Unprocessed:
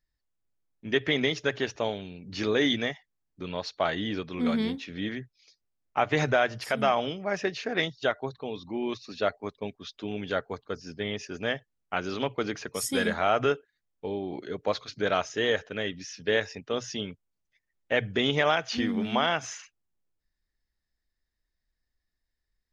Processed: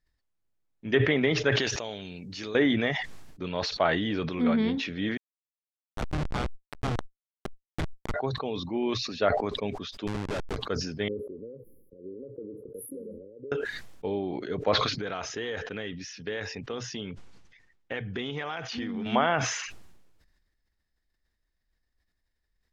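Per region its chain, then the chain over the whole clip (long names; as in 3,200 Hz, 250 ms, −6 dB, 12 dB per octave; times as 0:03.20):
0:01.52–0:02.55: first-order pre-emphasis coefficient 0.8 + envelope flattener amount 70%
0:05.17–0:08.14: lower of the sound and its delayed copy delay 0.89 ms + comparator with hysteresis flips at −22 dBFS
0:10.07–0:10.57: comparator with hysteresis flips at −33.5 dBFS + one half of a high-frequency compander encoder only
0:11.08–0:13.52: bass and treble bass −14 dB, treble −2 dB + downward compressor 10 to 1, threshold −36 dBFS + linear-phase brick-wall band-stop 560–10,000 Hz
0:14.86–0:19.06: low-pass filter 6,700 Hz + notch filter 610 Hz, Q 7.8 + downward compressor 4 to 1, threshold −33 dBFS
whole clip: treble cut that deepens with the level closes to 2,200 Hz, closed at −21 dBFS; high-shelf EQ 6,000 Hz −8 dB; level that may fall only so fast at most 43 dB per second; level +2 dB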